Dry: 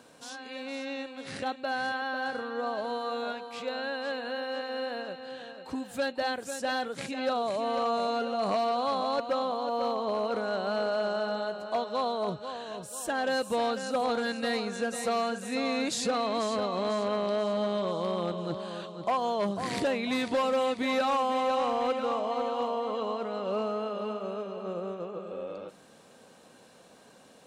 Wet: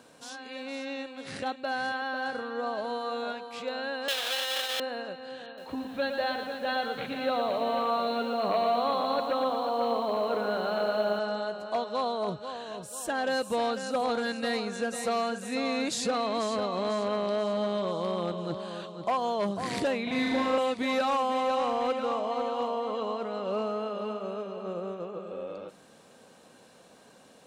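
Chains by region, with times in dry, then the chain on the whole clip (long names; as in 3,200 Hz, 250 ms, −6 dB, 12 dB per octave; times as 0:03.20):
0:04.08–0:04.80: each half-wave held at its own peak + high-pass filter 820 Hz + parametric band 3,400 Hz +15 dB 0.55 octaves
0:05.46–0:11.19: linear-phase brick-wall low-pass 4,400 Hz + mains-hum notches 50/100/150/200/250 Hz + feedback echo at a low word length 115 ms, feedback 55%, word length 9 bits, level −6 dB
0:20.03–0:20.58: high-shelf EQ 5,500 Hz −9 dB + downward compressor 2.5 to 1, threshold −29 dBFS + flutter between parallel walls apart 6.6 metres, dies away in 1.5 s
whole clip: no processing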